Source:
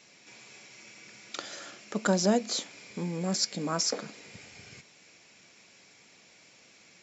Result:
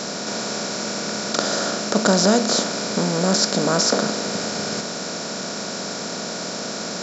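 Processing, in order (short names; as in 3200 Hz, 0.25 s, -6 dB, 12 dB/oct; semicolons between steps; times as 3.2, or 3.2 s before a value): per-bin compression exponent 0.4; gain +5.5 dB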